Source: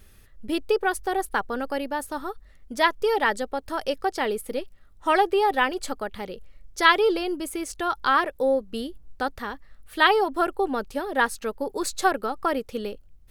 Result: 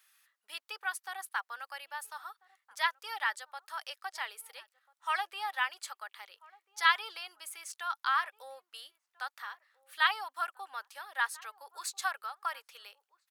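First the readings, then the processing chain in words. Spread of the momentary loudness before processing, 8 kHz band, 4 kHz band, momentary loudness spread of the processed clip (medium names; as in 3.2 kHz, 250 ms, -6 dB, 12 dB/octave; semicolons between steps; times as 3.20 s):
16 LU, -7.0 dB, -7.0 dB, 20 LU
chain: high-pass 1 kHz 24 dB/octave; echo from a far wall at 230 m, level -22 dB; trim -7 dB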